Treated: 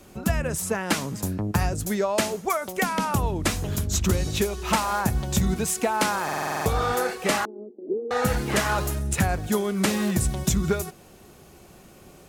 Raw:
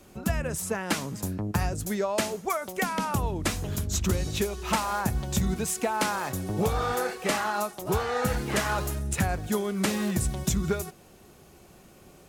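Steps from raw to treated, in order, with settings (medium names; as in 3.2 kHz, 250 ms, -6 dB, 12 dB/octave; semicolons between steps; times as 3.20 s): 7.45–8.11 s: elliptic band-pass 230–460 Hz, stop band 80 dB; buffer glitch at 6.24 s, samples 2048, times 8; trim +3.5 dB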